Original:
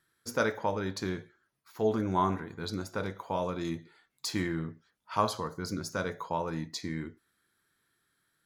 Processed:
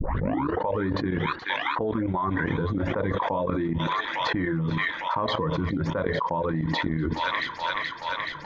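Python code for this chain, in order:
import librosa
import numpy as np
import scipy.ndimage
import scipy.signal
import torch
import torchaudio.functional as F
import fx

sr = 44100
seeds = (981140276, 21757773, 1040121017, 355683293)

p1 = fx.tape_start_head(x, sr, length_s=0.67)
p2 = fx.dereverb_blind(p1, sr, rt60_s=1.5)
p3 = fx.ripple_eq(p2, sr, per_octave=1.1, db=7)
p4 = fx.level_steps(p3, sr, step_db=17)
p5 = fx.transient(p4, sr, attack_db=-5, sustain_db=2)
p6 = fx.env_lowpass(p5, sr, base_hz=1000.0, full_db=-25.5)
p7 = fx.air_absorb(p6, sr, metres=330.0)
p8 = p7 + fx.echo_wet_highpass(p7, sr, ms=427, feedback_pct=81, hz=4500.0, wet_db=-6.5, dry=0)
p9 = fx.env_flatten(p8, sr, amount_pct=100)
y = F.gain(torch.from_numpy(p9), 8.5).numpy()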